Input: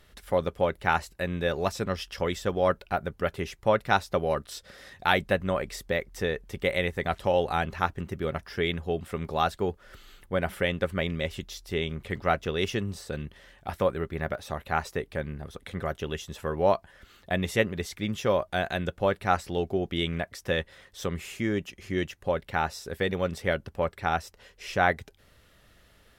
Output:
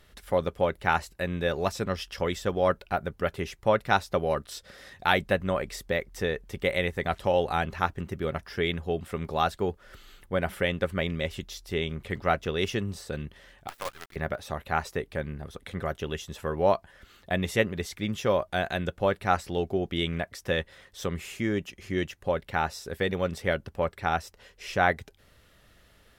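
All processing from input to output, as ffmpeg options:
-filter_complex "[0:a]asettb=1/sr,asplit=3[a][b][c];[a]atrim=end=13.684[d];[b]atrim=start=13.68:end=14.16,asetpts=PTS-STARTPTS,afade=t=in:d=0.004:c=qsin,afade=t=out:st=0.476:d=0.004:c=qsin,highpass=1.1k,equalizer=f=7k:t=o:w=0.4:g=-15,acrusher=bits=6:dc=4:mix=0:aa=0.000001[e];[c]atrim=start=14.156[f];[d][e]acrossfade=d=0.004:c1=hsin:c2=qsin[g];[g][f]acrossfade=d=0.004:c1=qsin:c2=hsin"

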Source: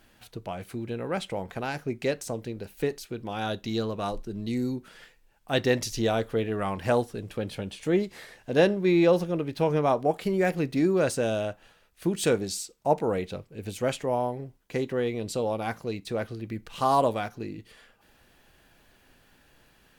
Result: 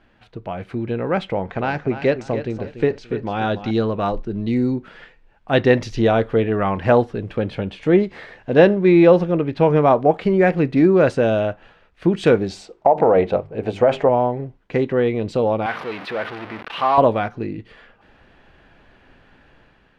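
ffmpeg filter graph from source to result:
-filter_complex "[0:a]asettb=1/sr,asplit=3[a][b][c];[a]atrim=end=1.274[d];[b]atrim=start=1.27:end=3.71,asetpts=PTS-STARTPTS,afade=t=in:d=0.004:c=qsin,afade=t=out:st=2.436:d=0.004:c=qsin,lowpass=f=7.9k:w=0.5412,lowpass=f=7.9k:w=1.3066,aecho=1:1:289|578|867:0.282|0.0761|0.0205,atrim=end_sample=107604[e];[c]atrim=start=3.706[f];[d][e]acrossfade=d=0.004:c1=hsin:c2=qsin[g];[g][f]acrossfade=d=0.004:c1=qsin:c2=hsin,asettb=1/sr,asplit=3[h][i][j];[h]atrim=end=12.504[k];[i]atrim=start=12.5:end=14.09,asetpts=PTS-STARTPTS,afade=t=in:d=0.004:c=qsin,afade=t=out:st=1.586:d=0.004:c=qsin,equalizer=f=700:t=o:w=1.4:g=13.5,bandreject=f=50:t=h:w=6,bandreject=f=100:t=h:w=6,bandreject=f=150:t=h:w=6,bandreject=f=200:t=h:w=6,bandreject=f=250:t=h:w=6,bandreject=f=300:t=h:w=6,bandreject=f=350:t=h:w=6,bandreject=f=400:t=h:w=6,acompressor=threshold=-18dB:ratio=10:attack=3.2:release=140:knee=1:detection=peak[l];[j]atrim=start=14.086[m];[k][l]acrossfade=d=0.004:c1=hsin:c2=qsin[n];[n][m]acrossfade=d=0.004:c1=qsin:c2=hsin,asettb=1/sr,asplit=3[o][p][q];[o]atrim=end=15.664[r];[p]atrim=start=15.66:end=16.98,asetpts=PTS-STARTPTS,afade=t=in:d=0.004:c=qsin,afade=t=out:st=1.316:d=0.004:c=qsin,aeval=exprs='val(0)+0.5*0.0422*sgn(val(0))':c=same,highpass=f=1.2k:p=1,equalizer=f=7.2k:t=o:w=0.87:g=-13.5[s];[q]atrim=start=16.976[t];[r][s]acrossfade=d=0.004:c1=hsin:c2=qsin[u];[u][t]acrossfade=d=0.004:c1=qsin:c2=hsin,lowpass=2.5k,dynaudnorm=f=150:g=7:m=6dB,volume=3.5dB"

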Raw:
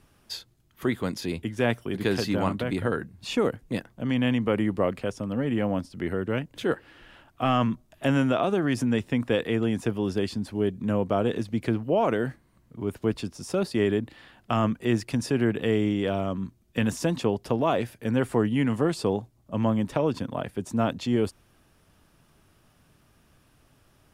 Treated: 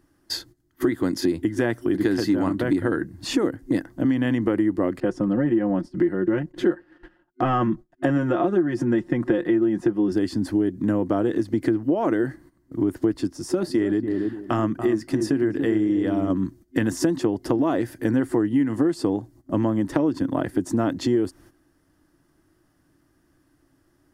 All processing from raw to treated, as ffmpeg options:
-filter_complex "[0:a]asettb=1/sr,asplit=3[a][b][c];[a]atrim=end=5.004[d];[b]atrim=start=5:end=10.12,asetpts=PTS-STARTPTS,afade=t=in:d=0.004:c=qsin,afade=t=out:st=5.116:d=0.004:c=qsin,lowpass=f=2.2k:p=1,aecho=1:1:5.6:0.68,atrim=end_sample=225792,agate=range=-33dB:threshold=-46dB:ratio=3:release=100:detection=peak[e];[c]atrim=start=10.116[f];[d][e]acrossfade=d=0.004:c1=hsin:c2=qsin[g];[g][f]acrossfade=d=0.004:c1=qsin:c2=hsin,asettb=1/sr,asplit=3[h][i][j];[h]atrim=end=13.274[k];[i]atrim=start=13.27:end=16.3,asetpts=PTS-STARTPTS,afade=t=in:d=0.004:c=qsin,afade=t=out:st=3.026:d=0.004:c=qsin,asplit=2[l][m];[m]adelay=286,lowpass=f=870:p=1,volume=-8dB,asplit=2[n][o];[o]adelay=286,lowpass=f=870:p=1,volume=0.21,asplit=2[p][q];[q]adelay=286,lowpass=f=870:p=1,volume=0.21[r];[l][n][p][r]amix=inputs=4:normalize=0,atrim=end_sample=133623,flanger=delay=0.9:depth=5:regen=-75:speed=1.4:shape=sinusoidal[s];[j]atrim=start=16.296[t];[k][s]acrossfade=d=0.004:c1=hsin:c2=qsin[u];[u][t]acrossfade=d=0.004:c1=qsin:c2=hsin,agate=range=-13dB:threshold=-52dB:ratio=16:detection=peak,superequalizer=6b=3.98:11b=1.41:12b=0.447:13b=0.562,acompressor=threshold=-26dB:ratio=6,volume=7.5dB"

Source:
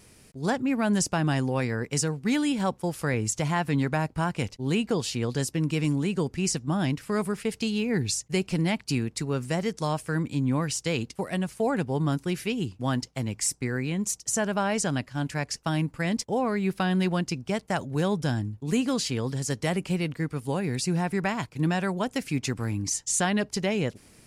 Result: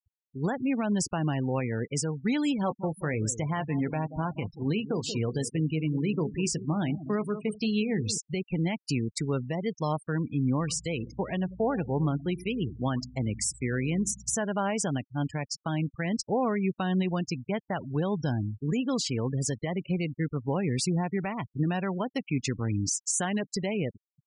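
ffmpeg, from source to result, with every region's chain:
-filter_complex "[0:a]asettb=1/sr,asplit=3[a][b][c];[a]atrim=end=2.614[d];[b]atrim=start=2.61:end=8.18,asetpts=PTS-STARTPTS,afade=t=in:d=0.004:c=qsin,afade=t=out:st=5.566:d=0.004:c=qsin,asplit=2[e][f];[f]adelay=19,volume=-11dB[g];[e][g]amix=inputs=2:normalize=0,atrim=end_sample=245637,asplit=2[h][i];[i]adelay=182,lowpass=f=2.2k:p=1,volume=-13dB,asplit=2[j][k];[k]adelay=182,lowpass=f=2.2k:p=1,volume=0.41,asplit=2[l][m];[m]adelay=182,lowpass=f=2.2k:p=1,volume=0.41,asplit=2[n][o];[o]adelay=182,lowpass=f=2.2k:p=1,volume=0.41[p];[h][j][l][n][p]amix=inputs=5:normalize=0,atrim=end_sample=245637[q];[c]atrim=start=8.176[r];[d][q]acrossfade=d=0.004:c1=hsin:c2=qsin[s];[s][r]acrossfade=d=0.004:c1=qsin:c2=hsin,asettb=1/sr,asplit=3[t][u][v];[t]atrim=end=10.594[w];[u]atrim=start=10.59:end=14.36,asetpts=PTS-STARTPTS,afade=t=in:d=0.004:c=qsin,afade=t=out:st=3.766:d=0.004:c=qsin,aeval=exprs='val(0)+0.00447*(sin(2*PI*60*n/s)+sin(2*PI*2*60*n/s)/2+sin(2*PI*3*60*n/s)/3+sin(2*PI*4*60*n/s)/4+sin(2*PI*5*60*n/s)/5)':c=same,aecho=1:1:92|184|276|368:0.15|0.0643|0.0277|0.0119,atrim=end_sample=166257[x];[v]atrim=start=14.356[y];[w][x]acrossfade=d=0.004:c1=hsin:c2=qsin[z];[z][y]acrossfade=d=0.004:c1=qsin:c2=hsin,alimiter=limit=-21dB:level=0:latency=1:release=453,adynamicequalizer=threshold=0.00158:dfrequency=1600:dqfactor=4.9:tfrequency=1600:tqfactor=4.9:attack=5:release=100:ratio=0.375:range=3.5:mode=cutabove:tftype=bell,afftfilt=real='re*gte(hypot(re,im),0.0178)':imag='im*gte(hypot(re,im),0.0178)':win_size=1024:overlap=0.75,volume=2.5dB"

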